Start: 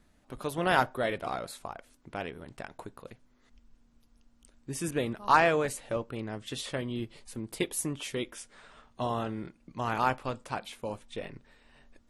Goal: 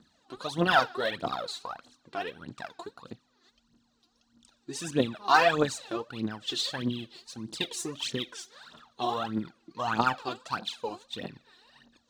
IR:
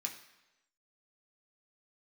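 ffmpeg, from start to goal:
-filter_complex "[0:a]highpass=170,equalizer=frequency=410:width_type=q:width=4:gain=-4,equalizer=frequency=590:width_type=q:width=4:gain=-5,equalizer=frequency=2200:width_type=q:width=4:gain=-10,equalizer=frequency=4100:width_type=q:width=4:gain=8,lowpass=frequency=6800:width=0.5412,lowpass=frequency=6800:width=1.3066,asplit=2[link_01][link_02];[1:a]atrim=start_sample=2205,highshelf=frequency=2300:gain=11.5[link_03];[link_02][link_03]afir=irnorm=-1:irlink=0,volume=-16.5dB[link_04];[link_01][link_04]amix=inputs=2:normalize=0,aphaser=in_gain=1:out_gain=1:delay=3:decay=0.76:speed=1.6:type=triangular"

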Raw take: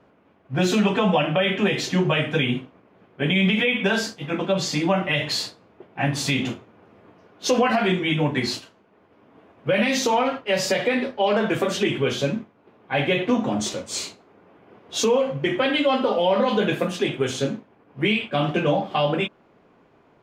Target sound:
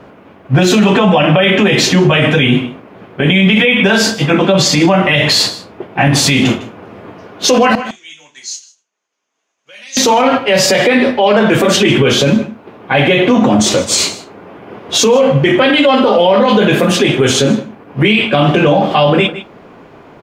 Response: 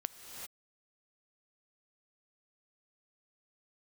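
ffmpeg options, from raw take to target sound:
-filter_complex "[0:a]asettb=1/sr,asplit=3[link_01][link_02][link_03];[link_01]atrim=end=7.754[link_04];[link_02]atrim=start=7.75:end=9.97,asetpts=PTS-STARTPTS,afade=type=in:duration=0.004:curve=qsin,afade=type=out:start_time=2.216:duration=0.004:curve=qsin,bandpass=frequency=6500:width_type=q:width=9.9:csg=0[link_05];[link_03]atrim=start=9.966[link_06];[link_04][link_05]acrossfade=duration=0.004:curve1=hsin:curve2=qsin[link_07];[link_07][link_06]acrossfade=duration=0.004:curve1=qsin:curve2=hsin,aecho=1:1:155:0.1[link_08];[1:a]atrim=start_sample=2205,atrim=end_sample=3528,asetrate=61740,aresample=44100[link_09];[link_08][link_09]afir=irnorm=-1:irlink=0,alimiter=level_in=24.5dB:limit=-1dB:release=50:level=0:latency=1,volume=-1dB"

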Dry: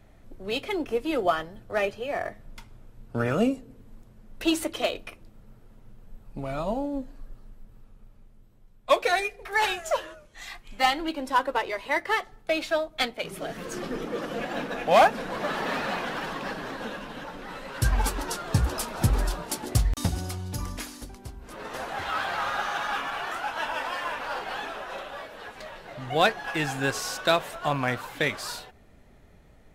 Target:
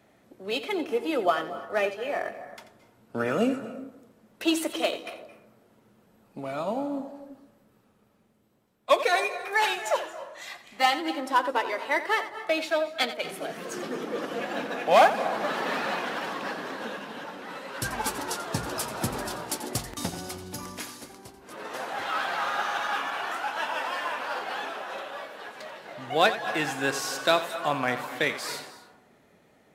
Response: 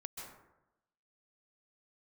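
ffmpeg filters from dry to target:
-filter_complex "[0:a]highpass=210,asplit=2[link_01][link_02];[1:a]atrim=start_sample=2205,adelay=87[link_03];[link_02][link_03]afir=irnorm=-1:irlink=0,volume=-7.5dB[link_04];[link_01][link_04]amix=inputs=2:normalize=0"

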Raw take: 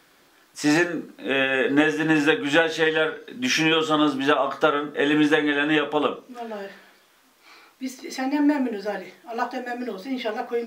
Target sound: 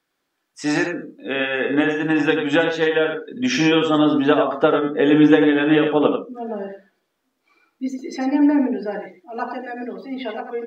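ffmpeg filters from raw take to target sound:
ffmpeg -i in.wav -filter_complex "[0:a]aecho=1:1:92:0.501,afftdn=noise_reduction=17:noise_floor=-39,acrossover=split=630[link_01][link_02];[link_01]dynaudnorm=framelen=400:gausssize=13:maxgain=11.5dB[link_03];[link_03][link_02]amix=inputs=2:normalize=0,volume=-1.5dB" out.wav

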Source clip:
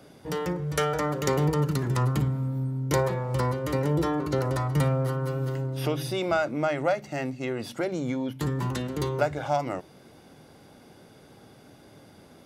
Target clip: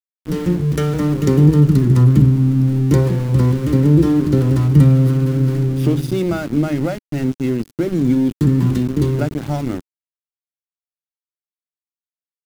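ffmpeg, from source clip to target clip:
ffmpeg -i in.wav -af "aeval=exprs='val(0)*gte(abs(val(0)),0.0282)':channel_layout=same,lowshelf=frequency=430:width_type=q:width=1.5:gain=13.5" out.wav

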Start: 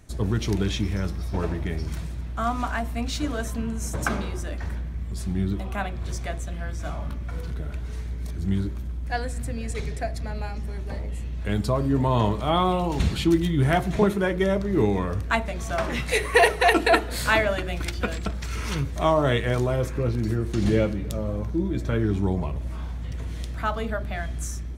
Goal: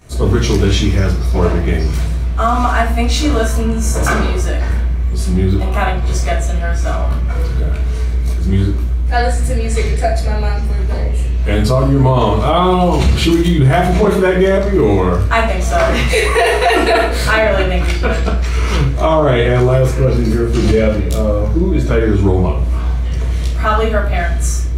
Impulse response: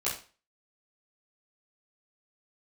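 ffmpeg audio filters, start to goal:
-filter_complex "[0:a]asettb=1/sr,asplit=3[link_01][link_02][link_03];[link_01]atrim=end=17.034[link_04];[link_02]atrim=start=17.03:end=19.64,asetpts=PTS-STARTPTS,afade=type=in:duration=0.004:curve=qsin,afade=type=out:start_time=2.606:duration=0.004:curve=qsin,highshelf=frequency=4600:gain=-7.5[link_05];[link_03]atrim=start=19.636[link_06];[link_04][link_05]acrossfade=duration=0.004:curve1=hsin:curve2=qsin[link_07];[link_07][link_06]acrossfade=duration=0.004:curve1=qsin:curve2=hsin[link_08];[1:a]atrim=start_sample=2205[link_09];[link_08][link_09]afir=irnorm=-1:irlink=0,alimiter=level_in=9dB:limit=-1dB:release=50:level=0:latency=1,volume=-2dB"

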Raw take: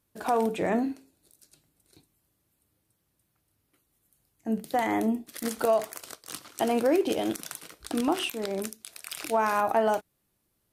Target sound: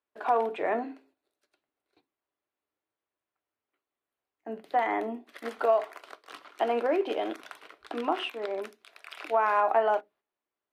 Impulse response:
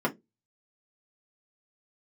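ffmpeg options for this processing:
-filter_complex "[0:a]agate=range=-9dB:threshold=-56dB:ratio=16:detection=peak,acrossover=split=400 3300:gain=0.0891 1 0.0631[link_01][link_02][link_03];[link_01][link_02][link_03]amix=inputs=3:normalize=0,asplit=2[link_04][link_05];[1:a]atrim=start_sample=2205[link_06];[link_05][link_06]afir=irnorm=-1:irlink=0,volume=-21dB[link_07];[link_04][link_07]amix=inputs=2:normalize=0"

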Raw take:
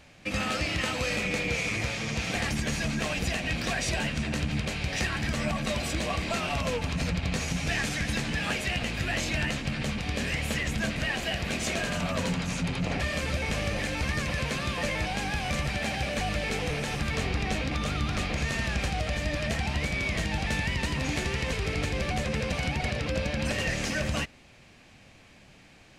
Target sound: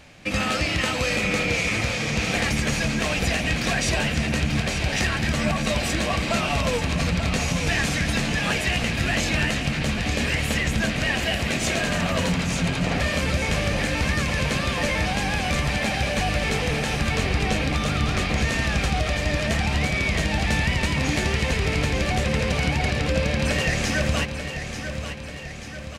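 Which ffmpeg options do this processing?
ffmpeg -i in.wav -af "aecho=1:1:889|1778|2667|3556|4445|5334:0.355|0.195|0.107|0.059|0.0325|0.0179,volume=5.5dB" out.wav

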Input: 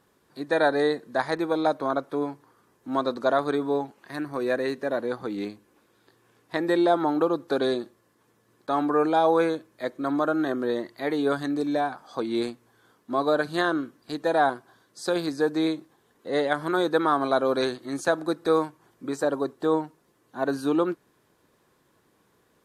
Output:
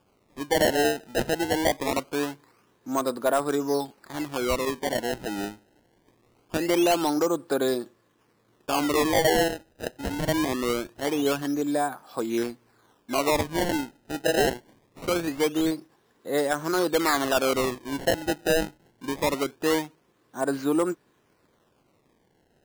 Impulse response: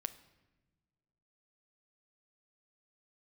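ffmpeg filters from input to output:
-filter_complex "[0:a]asettb=1/sr,asplit=3[link_01][link_02][link_03];[link_01]atrim=end=9.484[link_04];[link_02]atrim=start=9.48:end=10.29,asetpts=PTS-STARTPTS,afade=type=in:duration=0.004:curve=qsin,afade=type=out:start_time=0.806:duration=0.004:curve=qsin,tiltshelf=frequency=1100:gain=-7.5[link_05];[link_03]atrim=start=10.286[link_06];[link_04][link_05]acrossfade=duration=0.004:curve1=hsin:curve2=qsin[link_07];[link_07][link_06]acrossfade=duration=0.004:curve1=qsin:curve2=hsin,acrusher=samples=22:mix=1:aa=0.000001:lfo=1:lforange=35.2:lforate=0.23,asoftclip=type=hard:threshold=-15.5dB"

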